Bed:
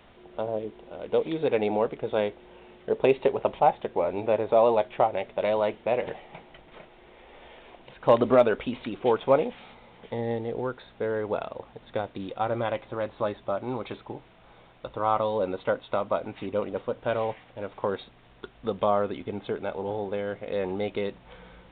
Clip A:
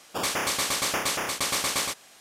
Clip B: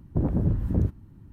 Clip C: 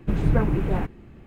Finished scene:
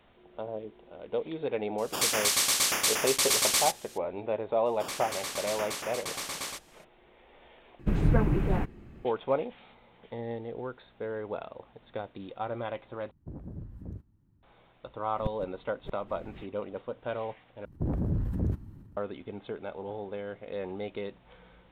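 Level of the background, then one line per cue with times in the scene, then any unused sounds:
bed −7 dB
0:01.78: mix in A −6 dB + high-shelf EQ 2,300 Hz +10 dB
0:04.65: mix in A −9.5 dB, fades 0.02 s
0:07.79: overwrite with C −3 dB
0:13.11: overwrite with B −18 dB
0:15.18: mix in C −1 dB + gate with flip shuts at −15 dBFS, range −38 dB
0:17.65: overwrite with B −6 dB + transient designer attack −1 dB, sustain +8 dB

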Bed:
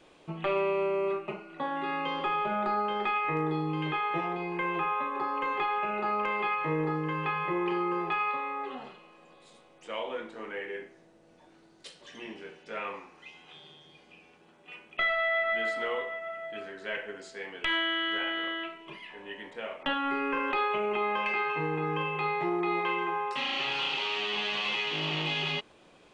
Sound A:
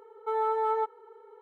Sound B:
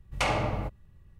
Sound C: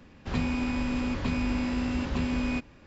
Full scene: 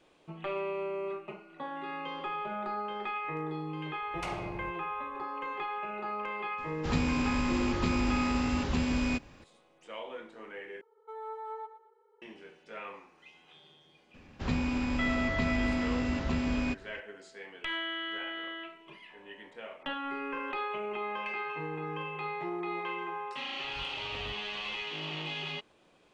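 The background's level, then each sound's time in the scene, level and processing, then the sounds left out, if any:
bed −6.5 dB
0:04.02: mix in B −12.5 dB
0:06.58: mix in C −1 dB + high-shelf EQ 5,300 Hz +8.5 dB
0:10.81: overwrite with A −14 dB + repeating echo 114 ms, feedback 32%, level −11.5 dB
0:14.14: mix in C −2 dB
0:23.64: mix in B −13.5 dB + compressor whose output falls as the input rises −32 dBFS, ratio −0.5

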